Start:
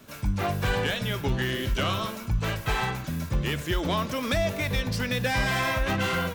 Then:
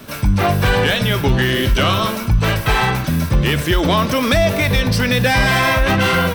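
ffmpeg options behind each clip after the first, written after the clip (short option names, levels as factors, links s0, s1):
-filter_complex "[0:a]bandreject=f=6900:w=7,asplit=2[s0][s1];[s1]alimiter=limit=0.0668:level=0:latency=1:release=25,volume=1.19[s2];[s0][s2]amix=inputs=2:normalize=0,volume=2.24"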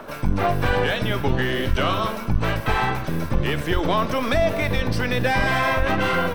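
-filter_complex "[0:a]highshelf=f=2500:g=-11,acrossover=split=430|1500[s0][s1][s2];[s0]aeval=exprs='max(val(0),0)':c=same[s3];[s1]acompressor=mode=upward:threshold=0.0355:ratio=2.5[s4];[s3][s4][s2]amix=inputs=3:normalize=0,volume=0.75"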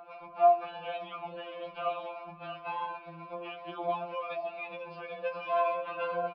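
-filter_complex "[0:a]aresample=11025,aresample=44100,asplit=3[s0][s1][s2];[s0]bandpass=f=730:t=q:w=8,volume=1[s3];[s1]bandpass=f=1090:t=q:w=8,volume=0.501[s4];[s2]bandpass=f=2440:t=q:w=8,volume=0.355[s5];[s3][s4][s5]amix=inputs=3:normalize=0,afftfilt=real='re*2.83*eq(mod(b,8),0)':imag='im*2.83*eq(mod(b,8),0)':win_size=2048:overlap=0.75"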